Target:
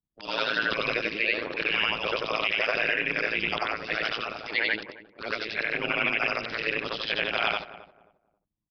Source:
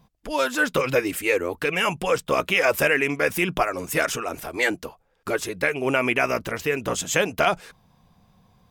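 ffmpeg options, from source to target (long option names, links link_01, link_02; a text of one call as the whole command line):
ffmpeg -i in.wav -filter_complex "[0:a]afftfilt=real='re':imag='-im':win_size=8192:overlap=0.75,anlmdn=0.1,acrossover=split=3500[link_01][link_02];[link_02]acompressor=threshold=-50dB:ratio=4:attack=1:release=60[link_03];[link_01][link_03]amix=inputs=2:normalize=0,highpass=frequency=110:poles=1,acrossover=split=320|950|2300[link_04][link_05][link_06][link_07];[link_07]acontrast=54[link_08];[link_04][link_05][link_06][link_08]amix=inputs=4:normalize=0,aresample=11025,aresample=44100,tremolo=f=110:d=1,crystalizer=i=6:c=0,asplit=2[link_09][link_10];[link_10]adelay=268,lowpass=frequency=820:poles=1,volume=-14dB,asplit=2[link_11][link_12];[link_12]adelay=268,lowpass=frequency=820:poles=1,volume=0.29,asplit=2[link_13][link_14];[link_14]adelay=268,lowpass=frequency=820:poles=1,volume=0.29[link_15];[link_09][link_11][link_13][link_15]amix=inputs=4:normalize=0,alimiter=limit=-13dB:level=0:latency=1:release=79" out.wav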